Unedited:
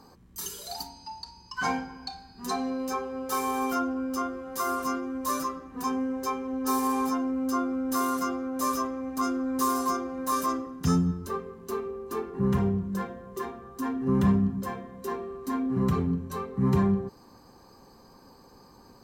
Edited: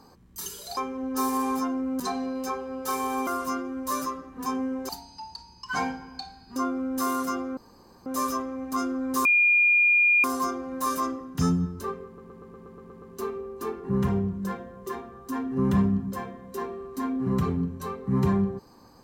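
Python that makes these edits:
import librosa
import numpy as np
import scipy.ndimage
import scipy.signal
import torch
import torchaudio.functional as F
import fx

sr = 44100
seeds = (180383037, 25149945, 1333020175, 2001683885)

y = fx.edit(x, sr, fx.swap(start_s=0.77, length_s=1.67, other_s=6.27, other_length_s=1.23),
    fx.cut(start_s=3.71, length_s=0.94),
    fx.insert_room_tone(at_s=8.51, length_s=0.49),
    fx.insert_tone(at_s=9.7, length_s=0.99, hz=2420.0, db=-16.5),
    fx.stutter(start_s=11.52, slice_s=0.12, count=9), tone=tone)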